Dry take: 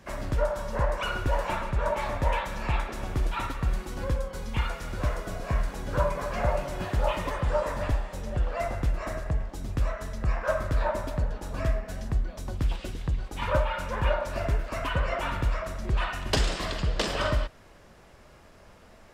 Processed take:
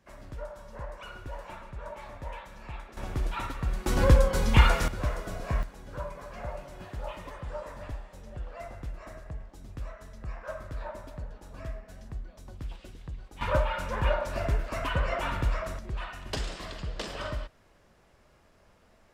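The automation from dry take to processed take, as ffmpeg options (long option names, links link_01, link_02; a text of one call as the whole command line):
ffmpeg -i in.wav -af "asetnsamples=nb_out_samples=441:pad=0,asendcmd='2.97 volume volume -3dB;3.86 volume volume 9.5dB;4.88 volume volume -2dB;5.63 volume volume -11.5dB;13.41 volume volume -1dB;15.79 volume volume -8.5dB',volume=-13.5dB" out.wav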